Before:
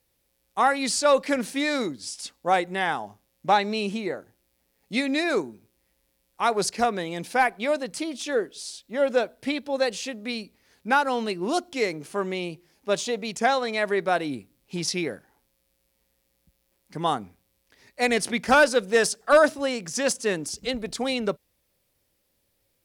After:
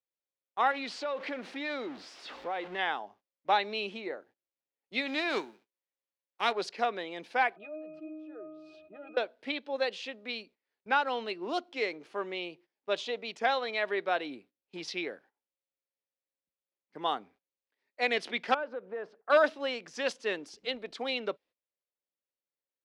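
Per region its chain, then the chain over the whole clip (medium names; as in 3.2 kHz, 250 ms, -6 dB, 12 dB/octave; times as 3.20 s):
0.71–2.79 s: jump at every zero crossing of -30 dBFS + low-pass 3.4 kHz 6 dB/octave + compression 4:1, threshold -25 dBFS
5.05–6.51 s: formants flattened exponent 0.6 + high-pass 85 Hz
7.56–9.17 s: peaking EQ 440 Hz +6 dB 2.3 oct + pitch-class resonator D#, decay 0.56 s + level flattener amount 70%
18.54–19.30 s: low-pass 1.3 kHz + compression 3:1, threshold -29 dBFS
whole clip: three-band isolator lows -22 dB, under 270 Hz, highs -23 dB, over 4.4 kHz; gate -51 dBFS, range -18 dB; dynamic bell 3.3 kHz, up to +7 dB, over -43 dBFS, Q 1.4; trim -6.5 dB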